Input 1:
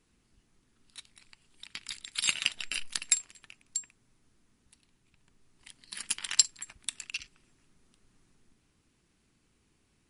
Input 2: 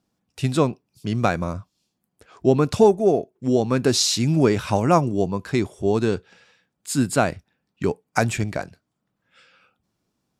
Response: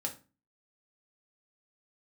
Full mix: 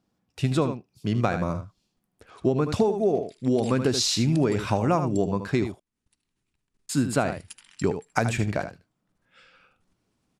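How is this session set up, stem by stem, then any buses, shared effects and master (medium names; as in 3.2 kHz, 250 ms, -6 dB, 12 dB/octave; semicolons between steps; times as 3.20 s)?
+1.5 dB, 1.40 s, no send, echo send -20.5 dB, level held to a coarse grid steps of 16 dB; auto duck -10 dB, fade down 0.25 s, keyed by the second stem
0.0 dB, 0.00 s, muted 5.72–6.89 s, no send, echo send -10.5 dB, treble shelf 5.3 kHz -7 dB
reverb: none
echo: delay 77 ms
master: compression 12:1, threshold -18 dBFS, peak gain reduction 9.5 dB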